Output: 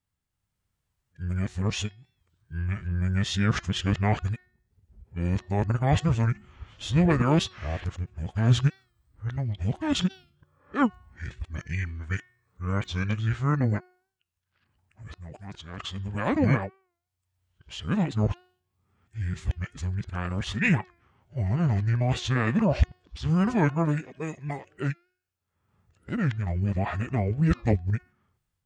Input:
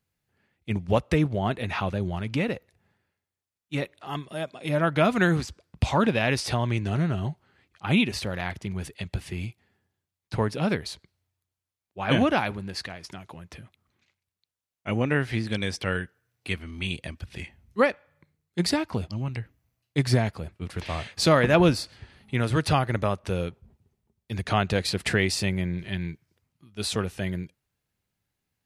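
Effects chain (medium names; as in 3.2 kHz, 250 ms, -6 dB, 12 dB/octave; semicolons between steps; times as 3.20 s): reverse the whole clip; level rider gain up to 4.5 dB; bass shelf 130 Hz +9.5 dB; de-hum 364.1 Hz, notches 21; formant shift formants -6 st; warped record 45 rpm, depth 100 cents; trim -6.5 dB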